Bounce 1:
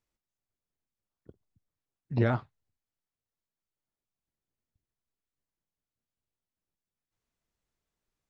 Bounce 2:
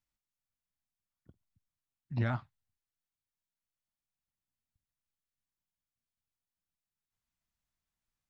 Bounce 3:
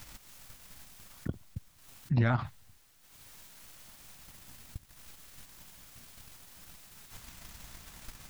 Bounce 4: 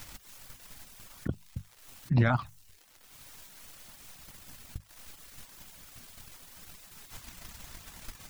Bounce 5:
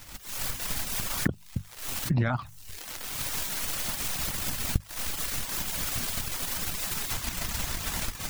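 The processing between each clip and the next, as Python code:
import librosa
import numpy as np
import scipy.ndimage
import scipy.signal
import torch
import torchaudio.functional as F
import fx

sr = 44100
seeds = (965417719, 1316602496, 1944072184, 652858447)

y1 = fx.peak_eq(x, sr, hz=430.0, db=-14.0, octaves=0.8)
y1 = y1 * 10.0 ** (-3.5 / 20.0)
y2 = fx.transient(y1, sr, attack_db=7, sustain_db=-11)
y2 = fx.env_flatten(y2, sr, amount_pct=70)
y3 = fx.dmg_crackle(y2, sr, seeds[0], per_s=230.0, level_db=-47.0)
y3 = fx.hum_notches(y3, sr, base_hz=50, count=4)
y3 = fx.dereverb_blind(y3, sr, rt60_s=0.53)
y3 = y3 * 10.0 ** (3.5 / 20.0)
y4 = fx.recorder_agc(y3, sr, target_db=-18.5, rise_db_per_s=51.0, max_gain_db=30)
y4 = y4 * 10.0 ** (-2.0 / 20.0)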